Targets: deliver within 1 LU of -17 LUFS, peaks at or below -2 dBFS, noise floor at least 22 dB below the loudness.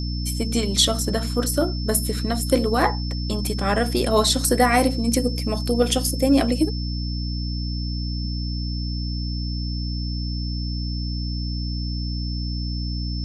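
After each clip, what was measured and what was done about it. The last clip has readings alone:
hum 60 Hz; highest harmonic 300 Hz; hum level -24 dBFS; steady tone 5.3 kHz; tone level -34 dBFS; loudness -23.5 LUFS; peak level -3.5 dBFS; loudness target -17.0 LUFS
-> de-hum 60 Hz, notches 5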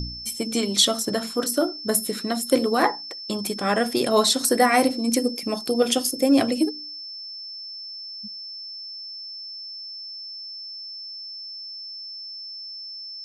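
hum not found; steady tone 5.3 kHz; tone level -34 dBFS
-> band-stop 5.3 kHz, Q 30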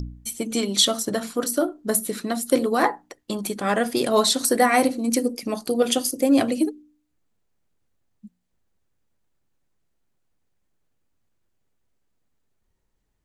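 steady tone not found; loudness -22.0 LUFS; peak level -5.0 dBFS; loudness target -17.0 LUFS
-> trim +5 dB; peak limiter -2 dBFS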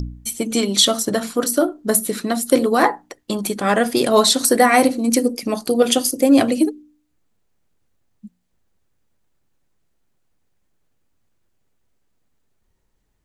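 loudness -17.5 LUFS; peak level -2.0 dBFS; noise floor -68 dBFS

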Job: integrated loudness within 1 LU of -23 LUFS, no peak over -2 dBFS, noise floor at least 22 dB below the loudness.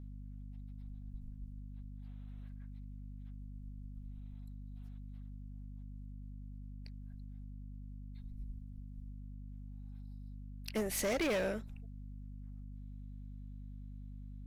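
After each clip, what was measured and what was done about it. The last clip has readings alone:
clipped samples 0.7%; clipping level -30.0 dBFS; hum 50 Hz; highest harmonic 250 Hz; hum level -45 dBFS; loudness -45.0 LUFS; peak level -30.0 dBFS; loudness target -23.0 LUFS
-> clip repair -30 dBFS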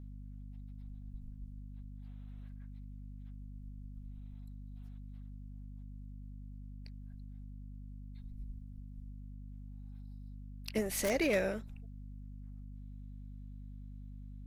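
clipped samples 0.0%; hum 50 Hz; highest harmonic 250 Hz; hum level -45 dBFS
-> hum notches 50/100/150/200/250 Hz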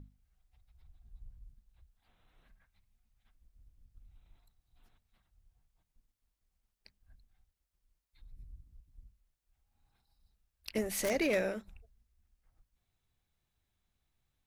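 hum not found; loudness -34.0 LUFS; peak level -20.0 dBFS; loudness target -23.0 LUFS
-> trim +11 dB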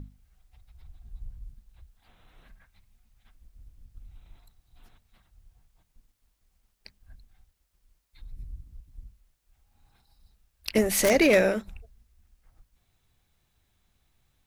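loudness -23.0 LUFS; peak level -9.0 dBFS; noise floor -74 dBFS

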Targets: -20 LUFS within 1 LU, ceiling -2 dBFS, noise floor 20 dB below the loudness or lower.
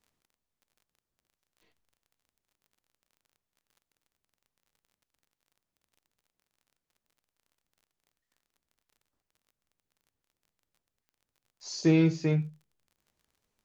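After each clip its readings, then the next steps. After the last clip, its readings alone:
tick rate 30 per s; loudness -26.5 LUFS; peak level -12.5 dBFS; loudness target -20.0 LUFS
-> de-click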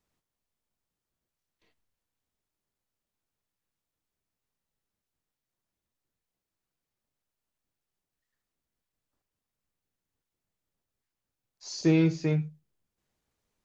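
tick rate 0 per s; loudness -26.5 LUFS; peak level -12.5 dBFS; loudness target -20.0 LUFS
-> trim +6.5 dB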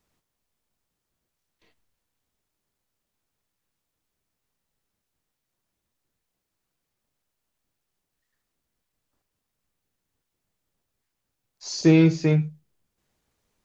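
loudness -20.0 LUFS; peak level -6.0 dBFS; noise floor -82 dBFS

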